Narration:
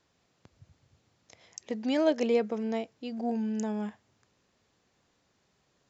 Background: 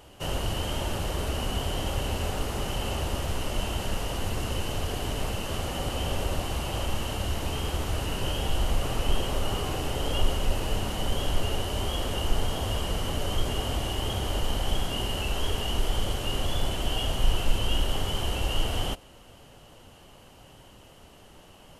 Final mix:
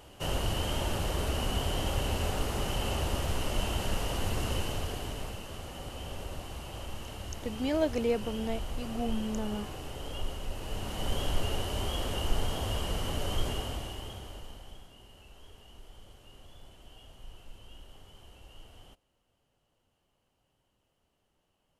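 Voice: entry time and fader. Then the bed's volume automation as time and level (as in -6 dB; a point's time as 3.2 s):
5.75 s, -3.0 dB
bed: 4.55 s -1.5 dB
5.52 s -11 dB
10.53 s -11 dB
11.11 s -3.5 dB
13.47 s -3.5 dB
14.95 s -25 dB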